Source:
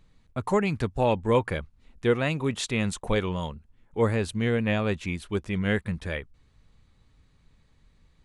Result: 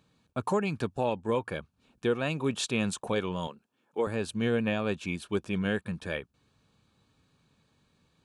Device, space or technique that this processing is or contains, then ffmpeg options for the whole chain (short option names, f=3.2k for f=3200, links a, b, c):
PA system with an anti-feedback notch: -filter_complex "[0:a]highpass=140,asuperstop=centerf=2000:order=4:qfactor=5.7,alimiter=limit=-17dB:level=0:latency=1:release=492,asettb=1/sr,asplit=3[a][b][c];[a]atrim=end=3.474[d];[b]atrim=start=3.47:end=4.07,asetpts=PTS-STARTPTS,afade=t=in:d=0.004:c=qsin,afade=t=out:st=0.596:d=0.004:c=qsin,highpass=280[e];[c]atrim=start=4.066[f];[d][e]acrossfade=d=0.004:c1=hsin:c2=qsin[g];[g][f]acrossfade=d=0.004:c1=qsin:c2=hsin"